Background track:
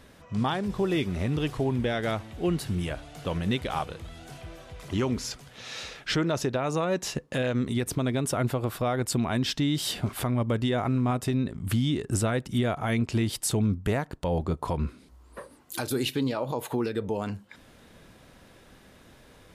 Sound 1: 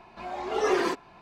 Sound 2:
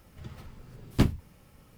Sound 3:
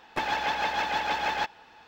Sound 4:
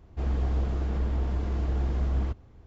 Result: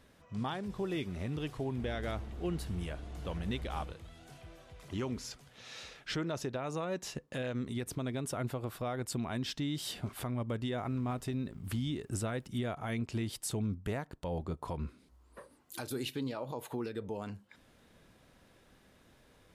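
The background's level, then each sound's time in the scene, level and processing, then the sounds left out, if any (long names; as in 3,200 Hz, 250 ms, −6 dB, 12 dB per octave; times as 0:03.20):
background track −9.5 dB
0:01.60: mix in 4 −16 dB
0:10.73: mix in 2 −14 dB + downward compressor, threshold −34 dBFS
not used: 1, 3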